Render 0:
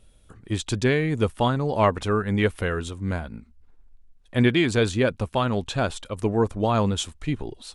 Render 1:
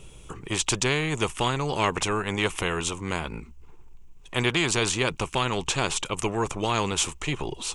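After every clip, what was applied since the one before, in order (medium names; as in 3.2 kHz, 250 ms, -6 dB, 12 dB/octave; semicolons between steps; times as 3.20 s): rippled EQ curve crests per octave 0.72, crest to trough 10 dB; spectrum-flattening compressor 2:1; trim -2.5 dB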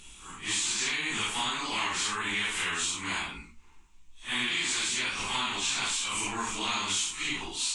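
phase randomisation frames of 200 ms; graphic EQ 125/250/500/1000/2000/4000/8000 Hz -10/+7/-12/+6/+8/+10/+11 dB; compression, threshold -20 dBFS, peak gain reduction 9 dB; trim -7 dB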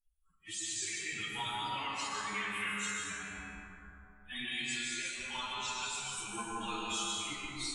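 expander on every frequency bin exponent 3; feedback comb 68 Hz, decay 1.1 s, harmonics all, mix 80%; plate-style reverb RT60 3.1 s, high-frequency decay 0.3×, pre-delay 110 ms, DRR -3.5 dB; trim +8 dB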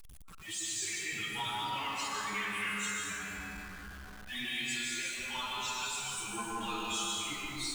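jump at every zero crossing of -45 dBFS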